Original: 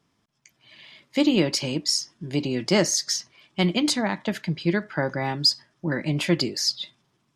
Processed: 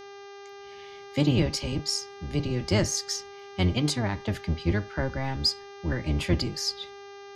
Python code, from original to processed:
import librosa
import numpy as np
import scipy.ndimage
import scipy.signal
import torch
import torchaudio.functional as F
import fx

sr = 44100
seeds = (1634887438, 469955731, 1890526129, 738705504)

y = fx.octave_divider(x, sr, octaves=1, level_db=3.0)
y = fx.dmg_buzz(y, sr, base_hz=400.0, harmonics=16, level_db=-39.0, tilt_db=-6, odd_only=False)
y = y * 10.0 ** (-5.5 / 20.0)